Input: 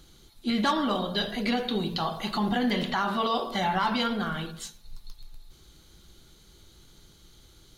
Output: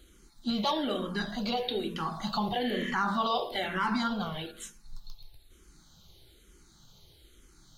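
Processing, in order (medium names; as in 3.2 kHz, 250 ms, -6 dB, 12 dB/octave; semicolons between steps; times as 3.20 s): spectral replace 2.66–2.88 s, 1.7–10 kHz both; barber-pole phaser -1.1 Hz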